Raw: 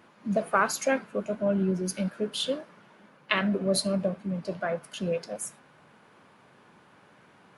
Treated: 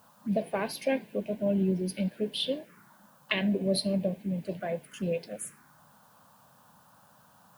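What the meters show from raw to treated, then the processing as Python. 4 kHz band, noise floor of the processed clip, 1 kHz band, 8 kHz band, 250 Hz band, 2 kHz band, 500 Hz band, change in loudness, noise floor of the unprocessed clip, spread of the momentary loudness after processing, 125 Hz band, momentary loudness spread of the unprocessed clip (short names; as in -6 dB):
-1.0 dB, -60 dBFS, -9.0 dB, -7.0 dB, -0.5 dB, -6.0 dB, -2.0 dB, -2.0 dB, -58 dBFS, 8 LU, -0.5 dB, 8 LU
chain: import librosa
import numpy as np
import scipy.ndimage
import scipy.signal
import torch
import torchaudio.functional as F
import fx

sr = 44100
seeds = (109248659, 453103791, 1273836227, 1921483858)

y = fx.env_phaser(x, sr, low_hz=350.0, high_hz=1300.0, full_db=-28.5)
y = fx.dmg_noise_colour(y, sr, seeds[0], colour='blue', level_db=-66.0)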